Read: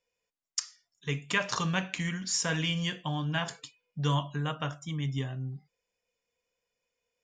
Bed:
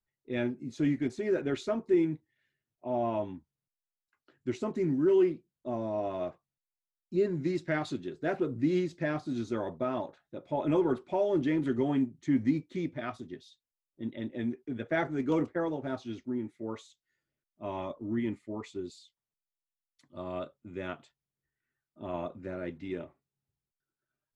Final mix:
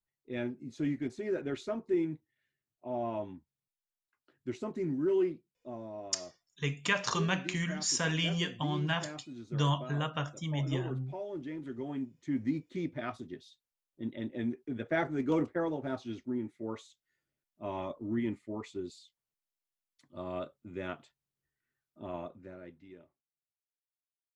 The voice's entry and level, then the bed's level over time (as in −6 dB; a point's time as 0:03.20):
5.55 s, −1.0 dB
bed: 0:05.27 −4.5 dB
0:06.13 −12 dB
0:11.61 −12 dB
0:12.94 −1 dB
0:21.95 −1 dB
0:23.81 −29.5 dB